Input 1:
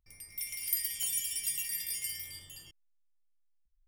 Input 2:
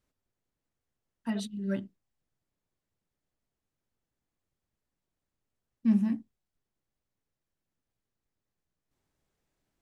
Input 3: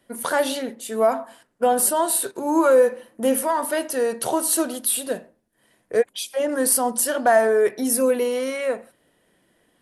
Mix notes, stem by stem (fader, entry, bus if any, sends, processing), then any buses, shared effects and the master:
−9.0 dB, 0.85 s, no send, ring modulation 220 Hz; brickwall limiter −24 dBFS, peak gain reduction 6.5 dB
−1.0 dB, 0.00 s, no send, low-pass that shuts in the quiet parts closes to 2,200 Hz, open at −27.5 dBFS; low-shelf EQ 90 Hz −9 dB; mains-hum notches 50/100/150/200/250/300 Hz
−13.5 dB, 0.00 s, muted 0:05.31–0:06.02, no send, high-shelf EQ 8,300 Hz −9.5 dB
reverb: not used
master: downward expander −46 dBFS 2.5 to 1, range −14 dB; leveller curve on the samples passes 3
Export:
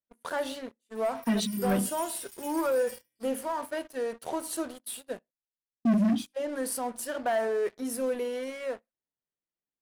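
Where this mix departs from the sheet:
stem 1 −9.0 dB → −16.5 dB
stem 3 −13.5 dB → −21.0 dB

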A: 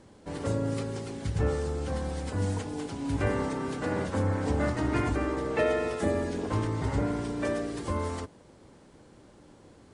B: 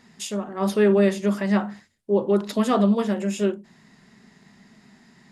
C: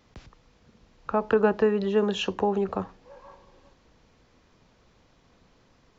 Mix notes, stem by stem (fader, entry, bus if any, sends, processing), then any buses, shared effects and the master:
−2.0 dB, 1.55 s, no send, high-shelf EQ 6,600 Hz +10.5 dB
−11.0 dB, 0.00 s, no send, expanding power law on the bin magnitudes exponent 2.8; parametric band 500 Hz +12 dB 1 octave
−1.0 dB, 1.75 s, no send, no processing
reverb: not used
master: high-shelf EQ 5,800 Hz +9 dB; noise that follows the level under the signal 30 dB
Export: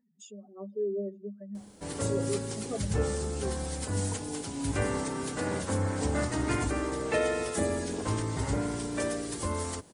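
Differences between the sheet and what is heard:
stem B −11.0 dB → −21.5 dB
stem C: muted
master: missing noise that follows the level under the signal 30 dB

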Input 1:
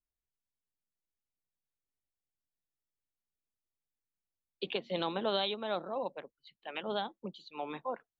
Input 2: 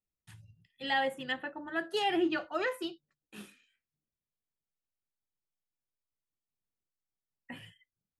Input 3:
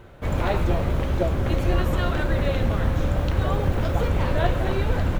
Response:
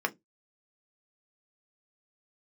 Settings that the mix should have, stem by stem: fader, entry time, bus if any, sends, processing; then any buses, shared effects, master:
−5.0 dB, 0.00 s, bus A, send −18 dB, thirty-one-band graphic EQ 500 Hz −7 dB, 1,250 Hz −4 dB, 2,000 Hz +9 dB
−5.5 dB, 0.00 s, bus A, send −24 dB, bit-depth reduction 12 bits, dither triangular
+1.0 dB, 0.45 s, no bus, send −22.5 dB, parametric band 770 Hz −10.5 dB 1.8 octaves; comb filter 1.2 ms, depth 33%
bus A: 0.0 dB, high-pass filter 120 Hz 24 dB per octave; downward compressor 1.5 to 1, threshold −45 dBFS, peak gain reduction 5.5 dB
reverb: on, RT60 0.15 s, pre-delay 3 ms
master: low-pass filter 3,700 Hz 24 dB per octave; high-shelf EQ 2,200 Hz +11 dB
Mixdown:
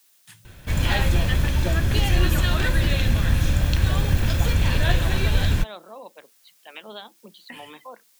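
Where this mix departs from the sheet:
stem 1: missing thirty-one-band graphic EQ 500 Hz −7 dB, 1,250 Hz −4 dB, 2,000 Hz +9 dB
stem 2 −5.5 dB → +2.5 dB
master: missing low-pass filter 3,700 Hz 24 dB per octave

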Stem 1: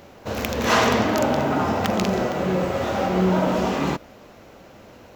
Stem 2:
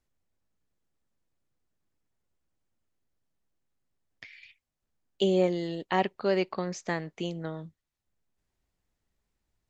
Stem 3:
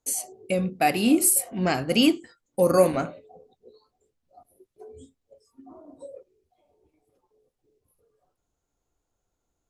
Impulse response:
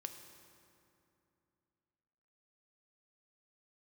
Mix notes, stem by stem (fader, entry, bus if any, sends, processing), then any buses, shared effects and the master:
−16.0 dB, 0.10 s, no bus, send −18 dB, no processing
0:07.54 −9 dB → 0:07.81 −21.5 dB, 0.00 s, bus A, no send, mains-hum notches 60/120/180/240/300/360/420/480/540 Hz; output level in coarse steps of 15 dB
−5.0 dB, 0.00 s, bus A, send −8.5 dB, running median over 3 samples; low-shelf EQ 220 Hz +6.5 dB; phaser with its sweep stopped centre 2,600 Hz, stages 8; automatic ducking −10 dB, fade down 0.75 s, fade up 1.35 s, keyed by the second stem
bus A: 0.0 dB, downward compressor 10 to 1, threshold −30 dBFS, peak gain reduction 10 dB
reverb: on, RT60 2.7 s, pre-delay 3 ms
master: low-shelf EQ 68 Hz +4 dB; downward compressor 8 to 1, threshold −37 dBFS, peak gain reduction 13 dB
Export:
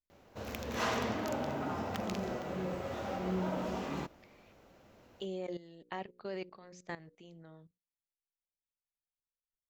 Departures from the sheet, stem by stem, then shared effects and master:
stem 3: muted
master: missing downward compressor 8 to 1, threshold −37 dBFS, peak gain reduction 13 dB

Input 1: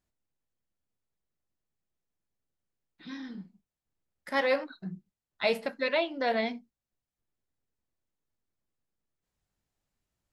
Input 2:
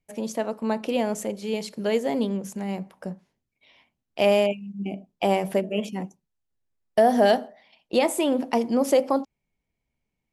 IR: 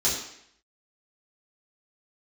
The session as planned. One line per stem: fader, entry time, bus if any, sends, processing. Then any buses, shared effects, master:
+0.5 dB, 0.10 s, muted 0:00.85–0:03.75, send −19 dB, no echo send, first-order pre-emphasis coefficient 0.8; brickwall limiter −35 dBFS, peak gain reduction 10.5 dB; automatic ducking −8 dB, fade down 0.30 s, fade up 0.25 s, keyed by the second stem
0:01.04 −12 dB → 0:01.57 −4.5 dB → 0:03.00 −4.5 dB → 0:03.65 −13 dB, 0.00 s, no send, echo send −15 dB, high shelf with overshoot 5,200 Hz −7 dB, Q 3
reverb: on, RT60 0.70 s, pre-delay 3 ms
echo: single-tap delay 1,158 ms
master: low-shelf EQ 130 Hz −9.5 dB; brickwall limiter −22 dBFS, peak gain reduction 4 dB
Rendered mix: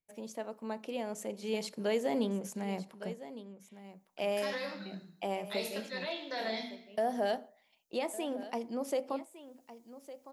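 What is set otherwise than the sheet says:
stem 1 +0.5 dB → +12.0 dB
stem 2: missing high shelf with overshoot 5,200 Hz −7 dB, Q 3

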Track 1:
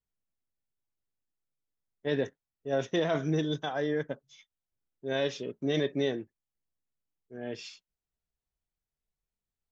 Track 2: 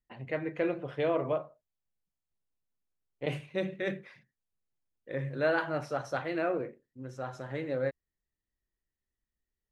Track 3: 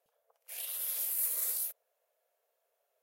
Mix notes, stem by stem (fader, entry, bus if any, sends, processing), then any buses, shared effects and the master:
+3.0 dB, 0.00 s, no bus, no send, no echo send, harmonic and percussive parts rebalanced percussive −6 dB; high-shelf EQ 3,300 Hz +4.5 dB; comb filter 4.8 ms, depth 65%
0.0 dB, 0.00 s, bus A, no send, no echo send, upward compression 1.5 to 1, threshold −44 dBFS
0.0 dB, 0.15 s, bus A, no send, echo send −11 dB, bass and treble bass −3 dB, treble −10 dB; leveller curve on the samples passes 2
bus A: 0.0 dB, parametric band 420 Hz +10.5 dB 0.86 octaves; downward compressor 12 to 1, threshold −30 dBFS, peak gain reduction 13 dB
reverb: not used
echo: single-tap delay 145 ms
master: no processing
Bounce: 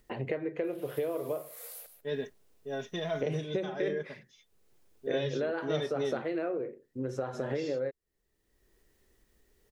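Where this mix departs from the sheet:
stem 1 +3.0 dB → −6.0 dB
stem 2 0.0 dB → +7.0 dB
stem 3 0.0 dB → −8.0 dB

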